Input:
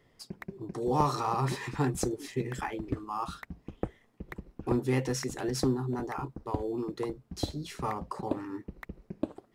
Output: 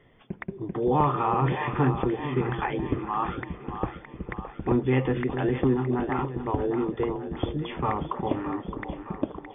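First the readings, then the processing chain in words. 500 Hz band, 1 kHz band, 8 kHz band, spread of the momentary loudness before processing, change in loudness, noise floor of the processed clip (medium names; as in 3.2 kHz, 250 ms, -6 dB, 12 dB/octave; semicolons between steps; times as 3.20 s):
+6.0 dB, +6.0 dB, under -35 dB, 16 LU, +5.5 dB, -48 dBFS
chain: in parallel at +1 dB: peak limiter -23 dBFS, peak gain reduction 10.5 dB; on the sum: brick-wall FIR low-pass 3.6 kHz; two-band feedback delay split 470 Hz, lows 454 ms, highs 616 ms, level -9 dB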